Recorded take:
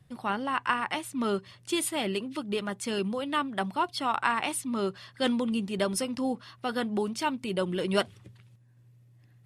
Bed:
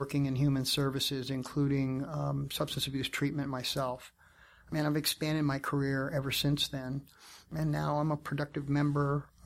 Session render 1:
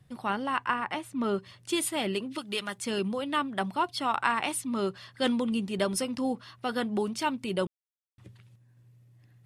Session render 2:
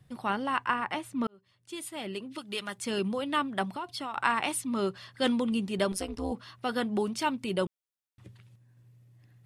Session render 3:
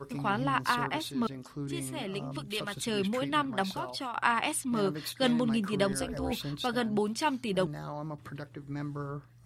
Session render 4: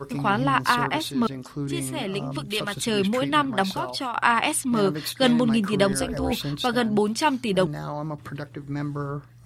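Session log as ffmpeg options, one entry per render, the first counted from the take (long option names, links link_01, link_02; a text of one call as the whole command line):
ffmpeg -i in.wav -filter_complex "[0:a]asettb=1/sr,asplit=3[link_01][link_02][link_03];[link_01]atrim=end=0.644[link_04];[link_02]atrim=start=0.64:end=1.38,asetpts=PTS-STARTPTS,afade=type=in:duration=0.004:curve=qsin,afade=type=out:start_time=0.736:duration=0.004:curve=qsin,highshelf=frequency=2900:gain=-8.5[link_05];[link_03]atrim=start=1.376[link_06];[link_04][link_05]acrossfade=duration=0.004:curve1=hsin:curve2=qsin[link_07];[link_07][link_06]acrossfade=duration=0.004:curve1=qsin:curve2=hsin,asettb=1/sr,asplit=3[link_08][link_09][link_10];[link_08]atrim=end=2.384[link_11];[link_09]atrim=start=2.38:end=2.78,asetpts=PTS-STARTPTS,afade=type=in:duration=0.004:curve=qsin,afade=type=out:start_time=0.396:duration=0.004:curve=qsin,tiltshelf=frequency=1200:gain=-7[link_12];[link_10]atrim=start=2.776[link_13];[link_11][link_12]acrossfade=duration=0.004:curve1=hsin:curve2=qsin[link_14];[link_14][link_13]acrossfade=duration=0.004:curve1=qsin:curve2=hsin,asplit=3[link_15][link_16][link_17];[link_15]atrim=end=7.67,asetpts=PTS-STARTPTS,afade=type=out:start_time=7.666:duration=0.004:curve=hsin[link_18];[link_16]atrim=start=7.67:end=8.18,asetpts=PTS-STARTPTS,volume=0[link_19];[link_17]atrim=start=8.18,asetpts=PTS-STARTPTS,afade=type=in:duration=0.004:curve=hsin[link_20];[link_18][link_19][link_20]concat=n=3:v=0:a=1" out.wav
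ffmpeg -i in.wav -filter_complex "[0:a]asettb=1/sr,asplit=3[link_01][link_02][link_03];[link_01]atrim=end=3.644[link_04];[link_02]atrim=start=3.64:end=4.16,asetpts=PTS-STARTPTS,afade=type=in:duration=0.004:curve=qsin,afade=type=out:start_time=0.516:duration=0.004:curve=qsin,acompressor=threshold=-33dB:ratio=5:attack=3.2:release=140:knee=1:detection=peak[link_05];[link_03]atrim=start=4.156[link_06];[link_04][link_05]acrossfade=duration=0.004:curve1=hsin:curve2=qsin[link_07];[link_07][link_06]acrossfade=duration=0.004:curve1=qsin:curve2=hsin,asettb=1/sr,asplit=3[link_08][link_09][link_10];[link_08]atrim=end=5.924[link_11];[link_09]atrim=start=5.92:end=6.32,asetpts=PTS-STARTPTS,afade=type=in:duration=0.004:curve=qsin,afade=type=out:start_time=0.396:duration=0.004:curve=qsin,tremolo=f=190:d=1[link_12];[link_10]atrim=start=6.316[link_13];[link_11][link_12]acrossfade=duration=0.004:curve1=hsin:curve2=qsin[link_14];[link_14][link_13]acrossfade=duration=0.004:curve1=qsin:curve2=hsin,asplit=2[link_15][link_16];[link_15]atrim=end=1.27,asetpts=PTS-STARTPTS,afade=type=out:start_time=1.266:duration=0.004:curve=hsin[link_17];[link_16]atrim=start=1.27,asetpts=PTS-STARTPTS,afade=type=in:duration=1.78[link_18];[link_17][link_18]concat=n=2:v=0:a=1" out.wav
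ffmpeg -i in.wav -i bed.wav -filter_complex "[1:a]volume=-7.5dB[link_01];[0:a][link_01]amix=inputs=2:normalize=0" out.wav
ffmpeg -i in.wav -af "volume=7.5dB,alimiter=limit=-3dB:level=0:latency=1" out.wav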